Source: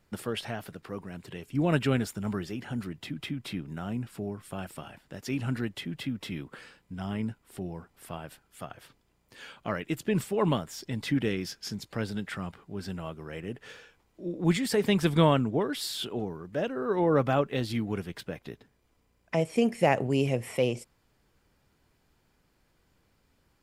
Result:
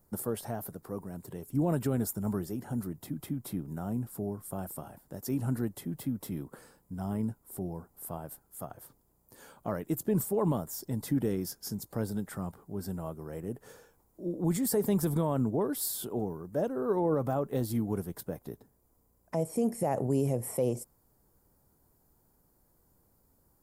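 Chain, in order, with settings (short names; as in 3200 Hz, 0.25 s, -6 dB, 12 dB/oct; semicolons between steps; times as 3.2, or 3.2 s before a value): EQ curve 920 Hz 0 dB, 2700 Hz -19 dB, 13000 Hz +13 dB; limiter -19.5 dBFS, peak gain reduction 9.5 dB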